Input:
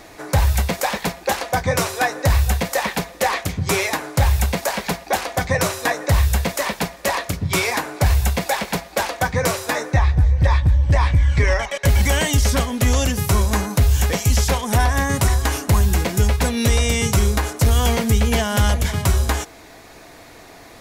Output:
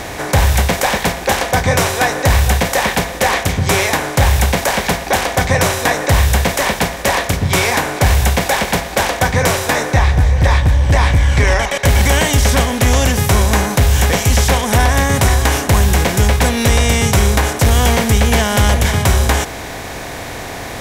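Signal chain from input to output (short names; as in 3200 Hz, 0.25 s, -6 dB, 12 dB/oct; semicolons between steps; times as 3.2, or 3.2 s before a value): per-bin compression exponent 0.6; in parallel at -8 dB: one-sided clip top -10.5 dBFS; on the sum: gain -1 dB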